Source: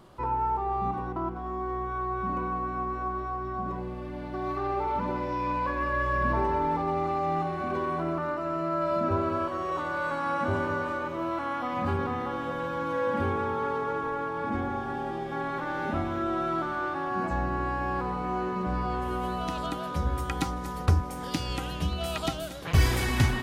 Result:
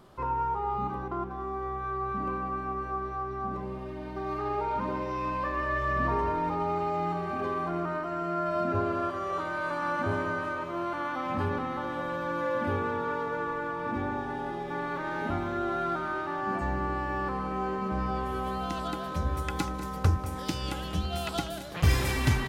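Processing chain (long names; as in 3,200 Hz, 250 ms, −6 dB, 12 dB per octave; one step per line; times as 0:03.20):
wrong playback speed 24 fps film run at 25 fps
slap from a distant wall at 33 metres, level −14 dB
level −1.5 dB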